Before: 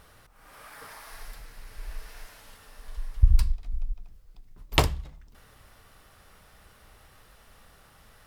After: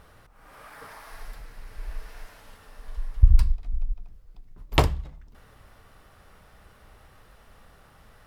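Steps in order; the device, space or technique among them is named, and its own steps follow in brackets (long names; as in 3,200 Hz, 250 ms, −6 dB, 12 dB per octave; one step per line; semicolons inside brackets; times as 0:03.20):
behind a face mask (high-shelf EQ 2,500 Hz −8 dB)
level +3 dB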